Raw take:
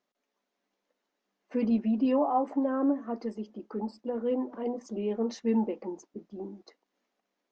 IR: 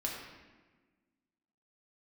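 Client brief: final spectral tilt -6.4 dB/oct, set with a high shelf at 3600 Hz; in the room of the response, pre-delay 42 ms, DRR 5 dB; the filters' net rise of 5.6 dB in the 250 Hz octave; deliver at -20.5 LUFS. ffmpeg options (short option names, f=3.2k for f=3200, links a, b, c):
-filter_complex "[0:a]equalizer=f=250:t=o:g=6,highshelf=f=3.6k:g=8.5,asplit=2[a][b];[1:a]atrim=start_sample=2205,adelay=42[c];[b][c]afir=irnorm=-1:irlink=0,volume=-8dB[d];[a][d]amix=inputs=2:normalize=0,volume=4dB"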